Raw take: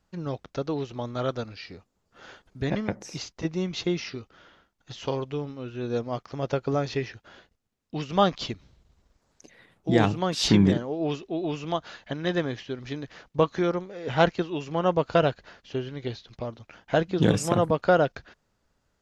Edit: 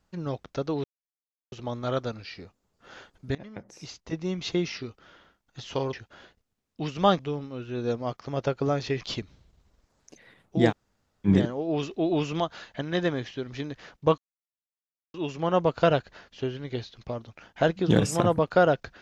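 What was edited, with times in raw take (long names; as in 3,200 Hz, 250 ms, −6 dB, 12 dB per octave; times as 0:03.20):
0:00.84: splice in silence 0.68 s
0:02.67–0:03.84: fade in, from −21.5 dB
0:07.07–0:08.33: move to 0:05.25
0:10.02–0:10.59: fill with room tone, crossfade 0.06 s
0:11.15–0:11.72: clip gain +4 dB
0:13.50–0:14.46: silence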